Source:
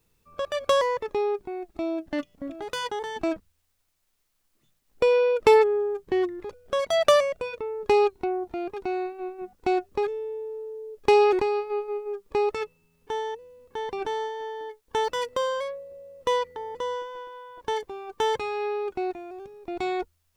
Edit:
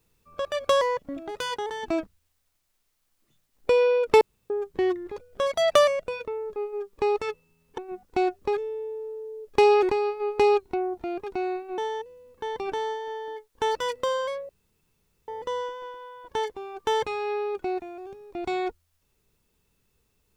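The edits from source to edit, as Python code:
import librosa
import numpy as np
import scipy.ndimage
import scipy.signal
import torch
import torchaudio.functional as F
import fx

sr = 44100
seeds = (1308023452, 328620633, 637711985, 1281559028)

y = fx.edit(x, sr, fx.cut(start_s=0.99, length_s=1.33),
    fx.room_tone_fill(start_s=5.54, length_s=0.29),
    fx.swap(start_s=7.89, length_s=1.39, other_s=11.89, other_length_s=1.22),
    fx.room_tone_fill(start_s=15.82, length_s=0.79), tone=tone)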